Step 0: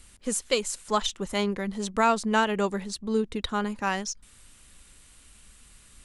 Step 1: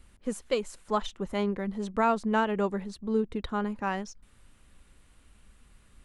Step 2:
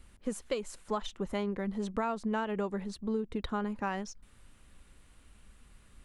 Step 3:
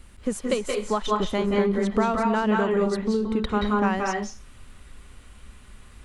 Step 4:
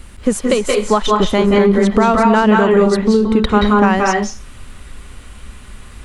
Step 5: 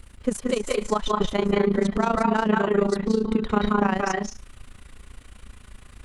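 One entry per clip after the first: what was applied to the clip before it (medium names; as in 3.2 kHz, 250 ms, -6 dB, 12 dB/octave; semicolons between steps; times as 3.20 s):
peaking EQ 7.9 kHz -14 dB 2.8 oct; trim -1 dB
compression 6:1, threshold -29 dBFS, peak gain reduction 9 dB
reverberation RT60 0.30 s, pre-delay 170 ms, DRR -0.5 dB; trim +8 dB
loudness maximiser +12.5 dB; trim -1 dB
AM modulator 28 Hz, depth 70%; trim -6.5 dB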